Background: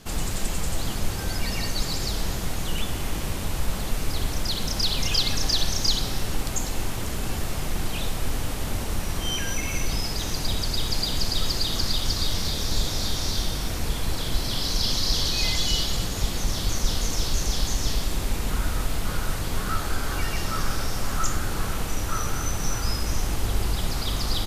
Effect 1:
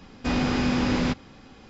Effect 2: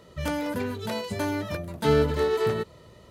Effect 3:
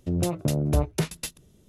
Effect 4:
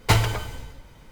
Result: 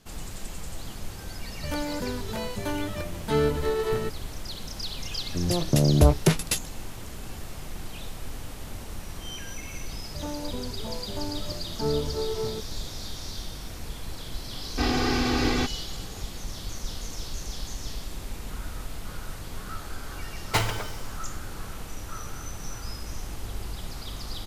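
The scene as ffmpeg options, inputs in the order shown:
-filter_complex "[2:a]asplit=2[a][b];[0:a]volume=-10dB[c];[3:a]dynaudnorm=f=140:g=5:m=11.5dB[d];[b]lowpass=f=1.1k:w=0.5412,lowpass=f=1.1k:w=1.3066[e];[1:a]aecho=1:1:2.6:0.92[f];[4:a]lowshelf=f=160:g=-8.5[g];[a]atrim=end=3.1,asetpts=PTS-STARTPTS,volume=-2.5dB,afade=t=in:d=0.004:c=hsin,afade=t=out:st=3.096:d=0.004:c=hsin,adelay=1460[h];[d]atrim=end=1.68,asetpts=PTS-STARTPTS,volume=-3dB,afade=t=in:d=0.004:c=hsin,afade=t=out:st=1.676:d=0.004:c=hsin,adelay=5280[i];[e]atrim=end=3.1,asetpts=PTS-STARTPTS,volume=-6dB,afade=t=in:d=0.004:c=hsin,afade=t=out:st=3.096:d=0.004:c=hsin,adelay=9970[j];[f]atrim=end=1.69,asetpts=PTS-STARTPTS,volume=-2dB,afade=t=in:d=0.004:c=hsin,afade=t=out:st=1.686:d=0.004:c=hsin,adelay=14530[k];[g]atrim=end=1.11,asetpts=PTS-STARTPTS,volume=-3.5dB,afade=t=in:d=0.004:c=hsin,afade=t=out:st=1.106:d=0.004:c=hsin,adelay=20450[l];[c][h][i][j][k][l]amix=inputs=6:normalize=0"

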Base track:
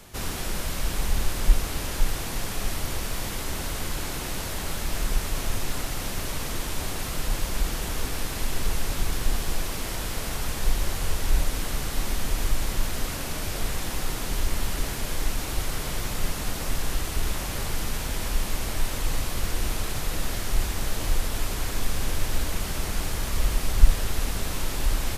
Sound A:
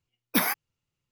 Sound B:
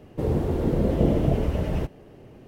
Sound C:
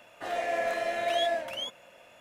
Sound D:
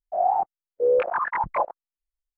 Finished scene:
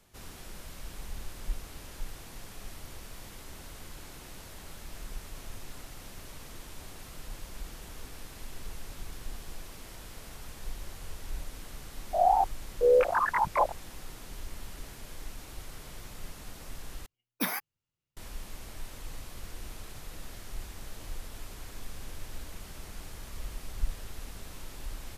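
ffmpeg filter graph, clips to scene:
-filter_complex "[0:a]volume=-15.5dB,asplit=2[a][b];[a]atrim=end=17.064[c];[1:a]atrim=end=1.11,asetpts=PTS-STARTPTS,volume=-7dB[d];[b]atrim=start=18.166[e];[4:a]atrim=end=2.37,asetpts=PTS-STARTPTS,volume=-1.5dB,afade=t=in:d=0.004:c=hsin,afade=t=out:st=2.366:d=0.004:c=hsin,adelay=12010[f];[c][d]acrossfade=d=0.004:c1=hsin:c2=hsin[g];[g][e]acrossfade=d=0.004:c1=hsin:c2=hsin[h];[h][f]amix=inputs=2:normalize=0"

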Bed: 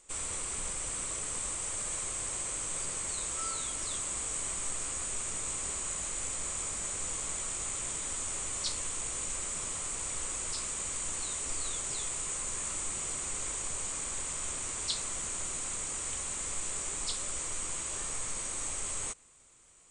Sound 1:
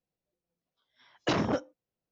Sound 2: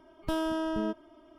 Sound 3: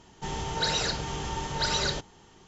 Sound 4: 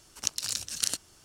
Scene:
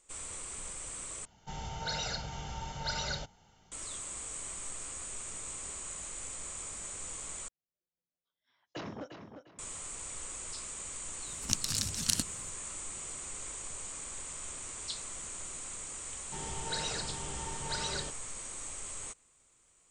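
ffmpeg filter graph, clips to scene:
-filter_complex "[3:a]asplit=2[a][b];[0:a]volume=-6dB[c];[a]aecho=1:1:1.4:0.63[d];[1:a]asplit=2[e][f];[f]adelay=351,lowpass=f=4.7k:p=1,volume=-7.5dB,asplit=2[g][h];[h]adelay=351,lowpass=f=4.7k:p=1,volume=0.31,asplit=2[i][j];[j]adelay=351,lowpass=f=4.7k:p=1,volume=0.31,asplit=2[k][l];[l]adelay=351,lowpass=f=4.7k:p=1,volume=0.31[m];[e][g][i][k][m]amix=inputs=5:normalize=0[n];[4:a]lowshelf=f=310:t=q:w=1.5:g=12[o];[c]asplit=3[p][q][r];[p]atrim=end=1.254[s];[d]atrim=end=2.47,asetpts=PTS-STARTPTS,volume=-9.5dB[t];[q]atrim=start=3.716:end=7.484[u];[n]atrim=end=2.11,asetpts=PTS-STARTPTS,volume=-14dB[v];[r]atrim=start=9.586[w];[o]atrim=end=1.24,asetpts=PTS-STARTPTS,volume=-1.5dB,afade=t=in:d=0.004:c=hsin,afade=t=out:st=1.236:d=0.004:c=hsin,adelay=11260[x];[b]atrim=end=2.47,asetpts=PTS-STARTPTS,volume=-9dB,afade=t=in:d=0.004:c=hsin,afade=t=out:st=2.466:d=0.004:c=hsin,adelay=16100[y];[s][t]acrossfade=d=0.004:c1=hsin:c2=hsin[z];[z][u]acrossfade=d=0.004:c1=hsin:c2=hsin[aa];[aa][v]acrossfade=d=0.004:c1=hsin:c2=hsin[ab];[ab][w]acrossfade=d=0.004:c1=hsin:c2=hsin[ac];[ac][x][y]amix=inputs=3:normalize=0"

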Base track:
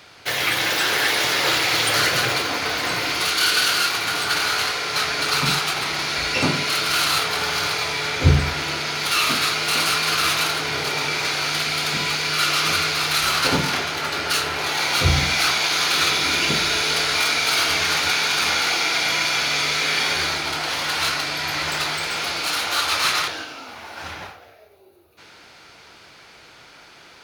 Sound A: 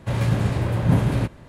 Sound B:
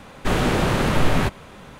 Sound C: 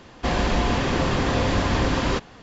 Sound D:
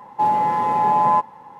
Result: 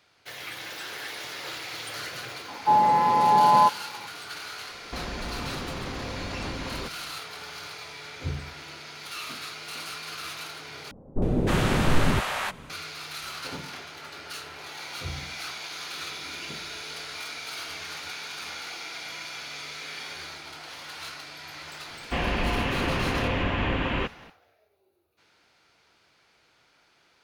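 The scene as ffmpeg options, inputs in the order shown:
-filter_complex "[3:a]asplit=2[a][b];[0:a]volume=-17dB[c];[a]acompressor=threshold=-23dB:ratio=6:attack=3.2:release=140:knee=1:detection=peak[d];[2:a]acrossover=split=640[e][f];[f]adelay=310[g];[e][g]amix=inputs=2:normalize=0[h];[b]highshelf=f=3.9k:t=q:w=3:g=-12.5[i];[c]asplit=2[j][k];[j]atrim=end=10.914[l];[h]atrim=end=1.79,asetpts=PTS-STARTPTS,volume=-2.5dB[m];[k]atrim=start=12.696[n];[4:a]atrim=end=1.59,asetpts=PTS-STARTPTS,volume=-1dB,afade=t=in:d=0.004:c=hsin,afade=t=out:st=1.586:d=0.004:c=hsin,adelay=2480[o];[d]atrim=end=2.42,asetpts=PTS-STARTPTS,volume=-7.5dB,afade=t=in:d=0.004:c=hsin,afade=t=out:st=2.416:d=0.004:c=hsin,adelay=206829S[p];[i]atrim=end=2.42,asetpts=PTS-STARTPTS,volume=-5.5dB,afade=t=in:d=0.004:c=hsin,afade=t=out:st=2.416:d=0.004:c=hsin,adelay=21880[q];[l][m]acrossfade=d=0.004:c1=hsin:c2=hsin[r];[r][n]acrossfade=d=0.004:c1=hsin:c2=hsin[s];[s][o][p][q]amix=inputs=4:normalize=0"

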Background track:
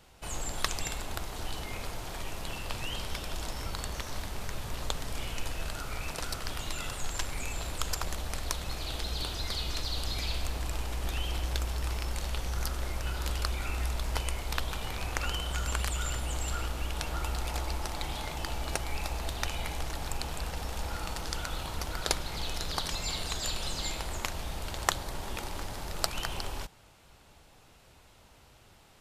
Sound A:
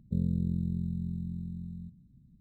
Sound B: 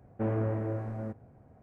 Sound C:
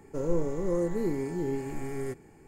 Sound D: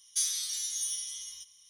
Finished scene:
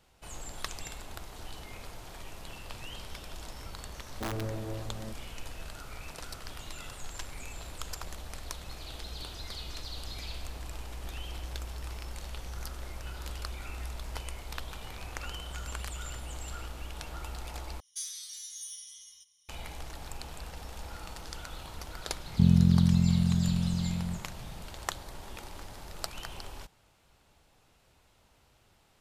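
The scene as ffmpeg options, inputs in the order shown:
-filter_complex "[0:a]volume=-7dB[a];[2:a]aeval=exprs='(mod(12.6*val(0)+1,2)-1)/12.6':c=same[b];[1:a]equalizer=f=120:w=0.51:g=11[c];[a]asplit=2[d][e];[d]atrim=end=17.804[f];[4:a]atrim=end=1.69,asetpts=PTS-STARTPTS,volume=-9dB[g];[e]atrim=start=19.486[h];[b]atrim=end=1.62,asetpts=PTS-STARTPTS,volume=-5.5dB,afade=t=in:d=0.004:c=hsin,afade=t=out:st=1.616:d=0.004:c=hsin,adelay=176841S[i];[c]atrim=end=2.4,asetpts=PTS-STARTPTS,volume=-1dB,afade=t=in:d=0.004:c=hsin,afade=t=out:st=2.396:d=0.004:c=hsin,adelay=22270[j];[f][g]acrossfade=d=0.004:c1=hsin:c2=hsin[k];[k][h]acrossfade=d=0.004:c1=hsin:c2=hsin[l];[l][i][j]amix=inputs=3:normalize=0"

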